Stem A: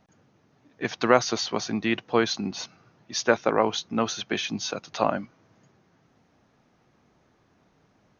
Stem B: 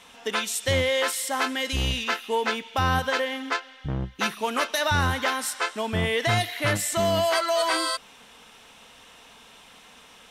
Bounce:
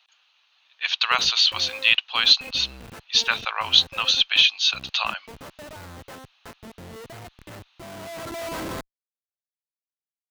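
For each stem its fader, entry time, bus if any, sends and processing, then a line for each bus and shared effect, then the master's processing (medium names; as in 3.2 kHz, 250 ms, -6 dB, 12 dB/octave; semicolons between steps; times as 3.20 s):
+1.5 dB, 0.00 s, no send, high-pass 1 kHz 24 dB/octave; high-order bell 3.3 kHz +15 dB 1 oct
-3.0 dB, 0.85 s, no send, low-pass that closes with the level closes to 2.9 kHz, closed at -22.5 dBFS; Schmitt trigger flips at -25 dBFS; auto duck -9 dB, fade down 1.35 s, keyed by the first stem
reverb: none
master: high-pass 70 Hz 6 dB/octave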